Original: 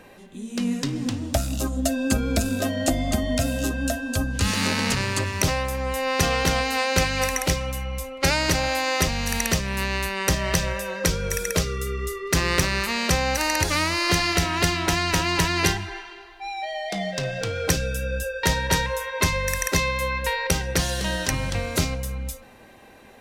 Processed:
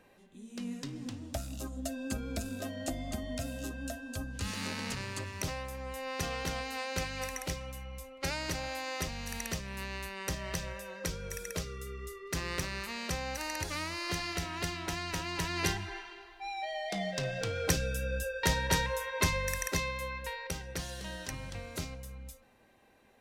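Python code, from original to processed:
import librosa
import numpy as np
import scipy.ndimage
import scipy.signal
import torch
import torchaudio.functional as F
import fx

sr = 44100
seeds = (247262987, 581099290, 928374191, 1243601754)

y = fx.gain(x, sr, db=fx.line((15.33, -14.0), (15.9, -7.0), (19.28, -7.0), (20.49, -15.5)))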